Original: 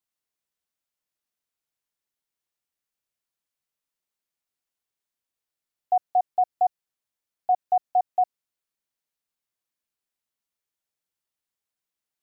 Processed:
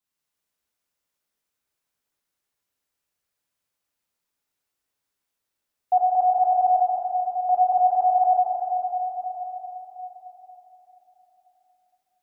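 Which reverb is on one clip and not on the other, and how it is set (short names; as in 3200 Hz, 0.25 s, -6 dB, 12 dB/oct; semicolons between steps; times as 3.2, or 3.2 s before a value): plate-style reverb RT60 4.4 s, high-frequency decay 0.55×, DRR -7 dB; gain -1 dB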